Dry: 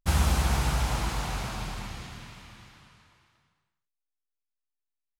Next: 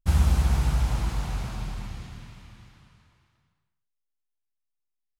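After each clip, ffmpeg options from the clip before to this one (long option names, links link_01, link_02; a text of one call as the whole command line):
ffmpeg -i in.wav -af "lowshelf=frequency=230:gain=10.5,volume=-5.5dB" out.wav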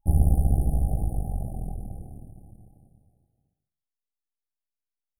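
ffmpeg -i in.wav -af "aeval=exprs='if(lt(val(0),0),0.251*val(0),val(0))':channel_layout=same,afftfilt=real='re*(1-between(b*sr/4096,830,8800))':imag='im*(1-between(b*sr/4096,830,8800))':win_size=4096:overlap=0.75,volume=3.5dB" out.wav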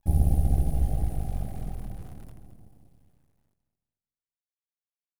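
ffmpeg -i in.wav -filter_complex "[0:a]acrusher=bits=9:dc=4:mix=0:aa=0.000001,asplit=2[link_01][link_02];[link_02]aecho=0:1:219|438|657|876:0.251|0.1|0.0402|0.0161[link_03];[link_01][link_03]amix=inputs=2:normalize=0,volume=-2dB" out.wav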